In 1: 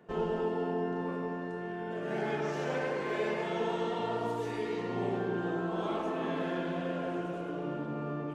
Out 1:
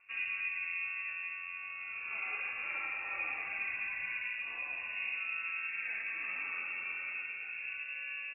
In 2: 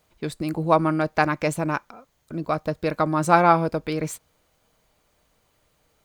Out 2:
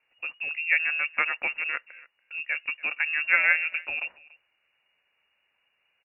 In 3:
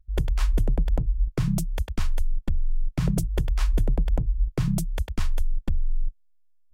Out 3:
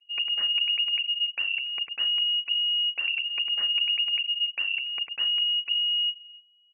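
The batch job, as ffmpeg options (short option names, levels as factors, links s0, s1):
-filter_complex "[0:a]asplit=2[s0][s1];[s1]adelay=285.7,volume=0.0794,highshelf=f=4000:g=-6.43[s2];[s0][s2]amix=inputs=2:normalize=0,lowpass=f=2500:t=q:w=0.5098,lowpass=f=2500:t=q:w=0.6013,lowpass=f=2500:t=q:w=0.9,lowpass=f=2500:t=q:w=2.563,afreqshift=-2900,volume=0.531"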